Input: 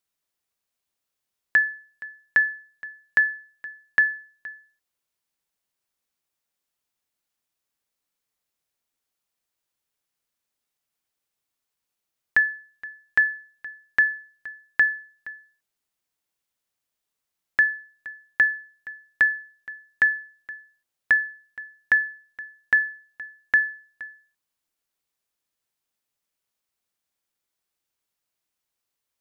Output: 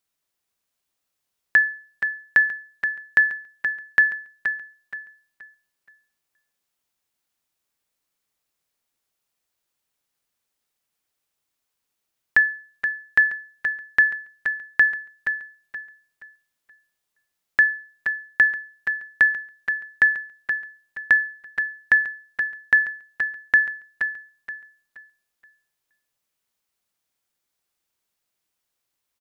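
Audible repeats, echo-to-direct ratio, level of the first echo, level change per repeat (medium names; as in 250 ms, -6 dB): 3, -6.5 dB, -7.0 dB, -10.0 dB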